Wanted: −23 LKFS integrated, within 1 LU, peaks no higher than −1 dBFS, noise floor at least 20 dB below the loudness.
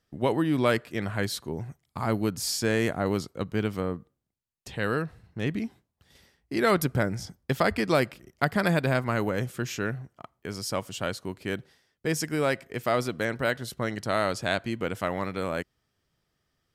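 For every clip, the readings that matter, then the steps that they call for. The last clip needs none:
integrated loudness −28.5 LKFS; sample peak −7.5 dBFS; target loudness −23.0 LKFS
→ level +5.5 dB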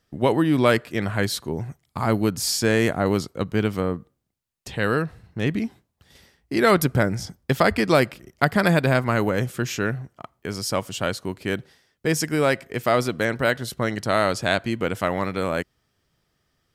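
integrated loudness −23.0 LKFS; sample peak −2.0 dBFS; background noise floor −74 dBFS

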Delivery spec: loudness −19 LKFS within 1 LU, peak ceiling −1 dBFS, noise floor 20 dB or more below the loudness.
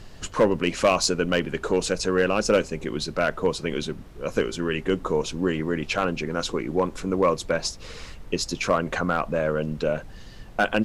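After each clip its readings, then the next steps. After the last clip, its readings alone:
share of clipped samples 0.2%; peaks flattened at −11.5 dBFS; background noise floor −42 dBFS; target noise floor −45 dBFS; integrated loudness −25.0 LKFS; sample peak −11.5 dBFS; target loudness −19.0 LKFS
→ clipped peaks rebuilt −11.5 dBFS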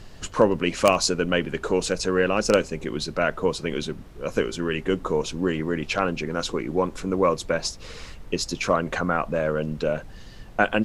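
share of clipped samples 0.0%; background noise floor −42 dBFS; target noise floor −45 dBFS
→ noise reduction from a noise print 6 dB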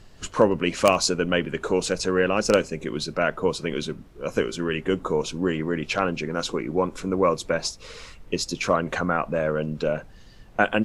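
background noise floor −48 dBFS; integrated loudness −25.0 LKFS; sample peak −2.5 dBFS; target loudness −19.0 LKFS
→ level +6 dB
brickwall limiter −1 dBFS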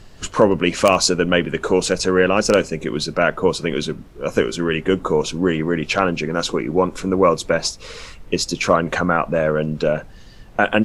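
integrated loudness −19.0 LKFS; sample peak −1.0 dBFS; background noise floor −42 dBFS

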